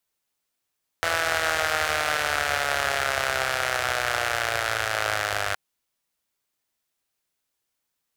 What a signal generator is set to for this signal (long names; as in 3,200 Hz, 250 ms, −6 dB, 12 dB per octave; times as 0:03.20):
pulse-train model of a four-cylinder engine, changing speed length 4.52 s, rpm 5,000, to 3,000, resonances 84/680/1,400 Hz